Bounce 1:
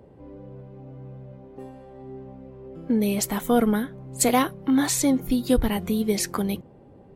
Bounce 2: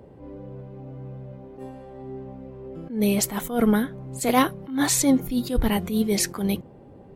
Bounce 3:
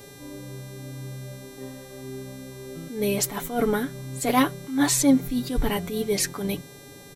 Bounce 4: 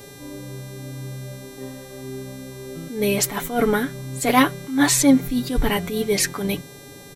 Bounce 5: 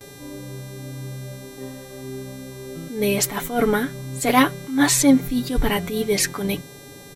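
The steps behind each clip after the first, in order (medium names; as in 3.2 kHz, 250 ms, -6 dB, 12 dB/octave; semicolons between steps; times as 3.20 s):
attacks held to a fixed rise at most 130 dB/s; trim +3 dB
mains buzz 400 Hz, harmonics 34, -48 dBFS -2 dB/octave; comb 7 ms, depth 57%; trim -2 dB
dynamic bell 2 kHz, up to +4 dB, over -40 dBFS, Q 0.94; trim +3.5 dB
gate with hold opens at -32 dBFS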